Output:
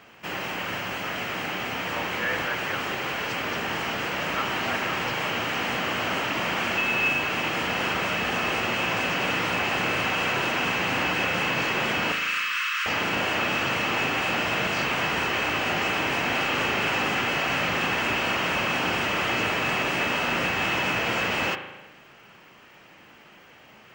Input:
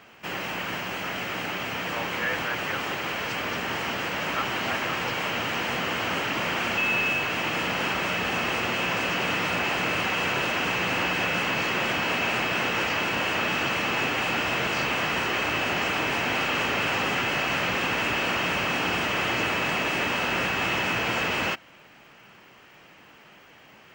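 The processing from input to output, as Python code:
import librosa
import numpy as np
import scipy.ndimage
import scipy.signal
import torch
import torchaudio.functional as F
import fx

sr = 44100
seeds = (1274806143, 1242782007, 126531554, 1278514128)

y = fx.steep_highpass(x, sr, hz=1100.0, slope=72, at=(12.12, 12.86))
y = fx.rev_spring(y, sr, rt60_s=1.1, pass_ms=(37,), chirp_ms=45, drr_db=8.0)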